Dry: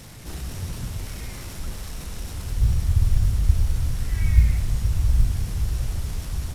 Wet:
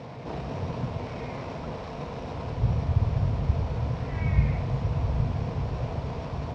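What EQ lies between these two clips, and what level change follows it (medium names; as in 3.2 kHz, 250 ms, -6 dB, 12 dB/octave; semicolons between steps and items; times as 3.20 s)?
cabinet simulation 120–4900 Hz, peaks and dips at 140 Hz +7 dB, 250 Hz +7 dB, 470 Hz +10 dB, 670 Hz +9 dB, 990 Hz +9 dB, 2.4 kHz +5 dB; bass shelf 180 Hz +11.5 dB; peaking EQ 720 Hz +9.5 dB 2.4 oct; -7.5 dB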